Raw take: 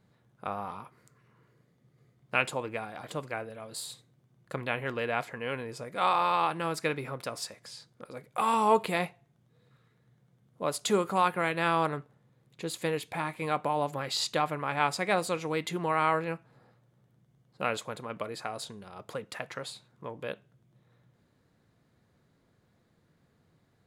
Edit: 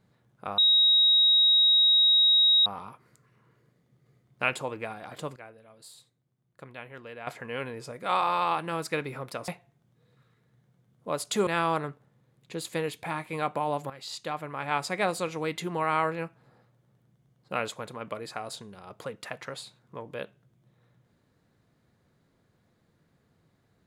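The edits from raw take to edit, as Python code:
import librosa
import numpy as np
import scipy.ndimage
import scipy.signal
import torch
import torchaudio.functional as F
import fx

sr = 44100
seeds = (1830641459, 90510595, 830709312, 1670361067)

y = fx.edit(x, sr, fx.insert_tone(at_s=0.58, length_s=2.08, hz=3800.0, db=-17.0),
    fx.clip_gain(start_s=3.28, length_s=1.91, db=-11.0),
    fx.cut(start_s=7.4, length_s=1.62),
    fx.cut(start_s=11.01, length_s=0.55),
    fx.fade_in_from(start_s=13.99, length_s=1.05, floor_db=-12.5), tone=tone)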